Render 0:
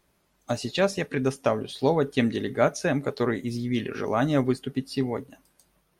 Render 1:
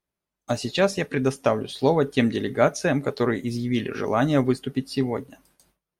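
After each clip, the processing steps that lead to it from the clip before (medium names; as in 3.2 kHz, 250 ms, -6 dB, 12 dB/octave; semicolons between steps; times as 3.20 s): gate with hold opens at -50 dBFS; trim +2.5 dB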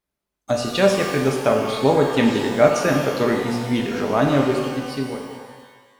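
fade out at the end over 1.85 s; pitch-shifted reverb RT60 1.4 s, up +12 st, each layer -8 dB, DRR 1.5 dB; trim +1.5 dB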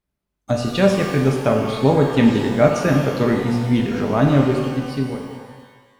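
tone controls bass +9 dB, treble -3 dB; trim -1 dB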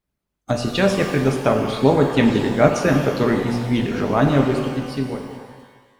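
harmonic-percussive split percussive +7 dB; trim -3.5 dB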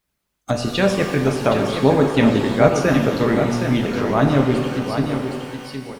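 delay 767 ms -7.5 dB; tape noise reduction on one side only encoder only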